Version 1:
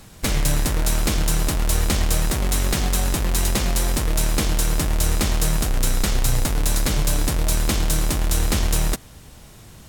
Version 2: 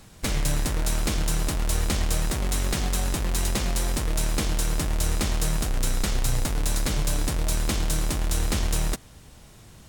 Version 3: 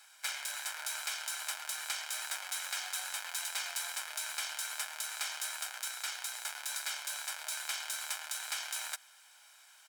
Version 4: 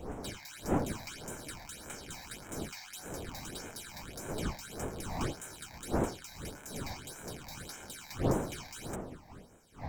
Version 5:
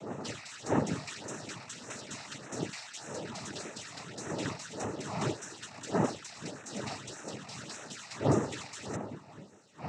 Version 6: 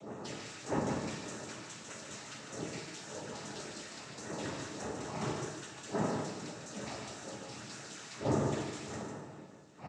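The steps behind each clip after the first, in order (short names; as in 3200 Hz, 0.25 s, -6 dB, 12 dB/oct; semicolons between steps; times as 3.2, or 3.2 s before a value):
bell 13000 Hz -5.5 dB 0.28 oct; gain -4.5 dB
comb 1.3 ms, depth 64%; limiter -14.5 dBFS, peak gain reduction 5 dB; ladder high-pass 950 Hz, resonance 25%
wind noise 580 Hz -34 dBFS; reverse echo 0.955 s -19.5 dB; phaser stages 8, 1.7 Hz, lowest notch 390–4500 Hz; gain -5.5 dB
noise vocoder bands 12; gain +3.5 dB
echo 0.149 s -5.5 dB; plate-style reverb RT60 1.2 s, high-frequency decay 0.8×, DRR 0 dB; gain -6.5 dB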